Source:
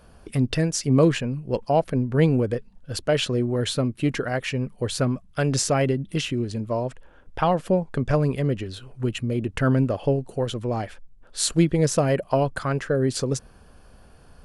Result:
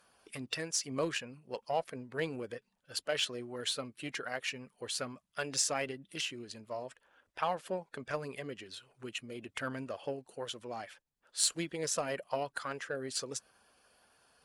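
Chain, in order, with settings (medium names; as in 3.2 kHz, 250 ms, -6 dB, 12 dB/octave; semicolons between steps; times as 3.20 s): coarse spectral quantiser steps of 15 dB; high-pass 1.4 kHz 6 dB/octave; Chebyshev shaper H 7 -25 dB, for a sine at -6.5 dBFS; in parallel at -12 dB: wavefolder -23.5 dBFS; on the sum: trim -3 dB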